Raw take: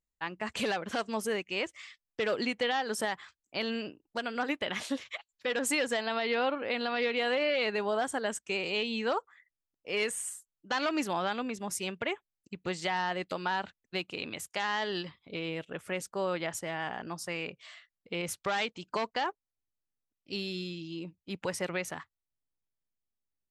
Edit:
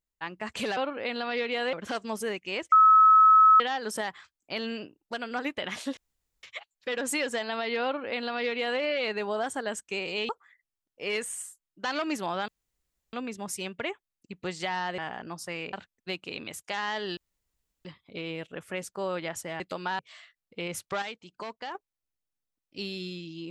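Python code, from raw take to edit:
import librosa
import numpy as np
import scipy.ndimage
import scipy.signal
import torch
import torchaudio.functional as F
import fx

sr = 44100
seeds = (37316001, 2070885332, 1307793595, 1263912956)

y = fx.edit(x, sr, fx.bleep(start_s=1.76, length_s=0.88, hz=1290.0, db=-13.5),
    fx.insert_room_tone(at_s=5.01, length_s=0.46),
    fx.duplicate(start_s=6.42, length_s=0.96, to_s=0.77),
    fx.cut(start_s=8.87, length_s=0.29),
    fx.insert_room_tone(at_s=11.35, length_s=0.65),
    fx.swap(start_s=13.2, length_s=0.39, other_s=16.78, other_length_s=0.75),
    fx.insert_room_tone(at_s=15.03, length_s=0.68),
    fx.clip_gain(start_s=18.56, length_s=0.73, db=-6.5), tone=tone)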